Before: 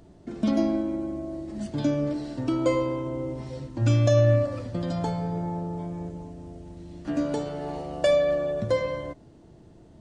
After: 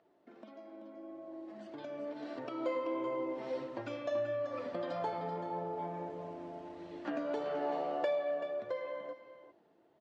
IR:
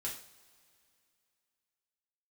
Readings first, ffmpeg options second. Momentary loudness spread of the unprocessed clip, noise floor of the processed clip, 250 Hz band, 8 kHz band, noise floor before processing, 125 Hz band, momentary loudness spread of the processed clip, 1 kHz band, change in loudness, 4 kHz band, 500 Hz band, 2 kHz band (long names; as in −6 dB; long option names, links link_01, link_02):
16 LU, −69 dBFS, −15.0 dB, below −20 dB, −52 dBFS, −27.0 dB, 15 LU, −3.5 dB, −12.0 dB, −13.5 dB, −10.0 dB, −8.5 dB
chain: -filter_complex "[0:a]acompressor=threshold=-33dB:ratio=6,highpass=480,lowpass=2700,asplit=2[link_01][link_02];[link_02]aecho=0:1:383:0.335[link_03];[link_01][link_03]amix=inputs=2:normalize=0,flanger=delay=1.5:depth=3.2:regen=-49:speed=1.6:shape=triangular,dynaudnorm=framelen=200:gausssize=21:maxgain=14.5dB,volume=-5.5dB"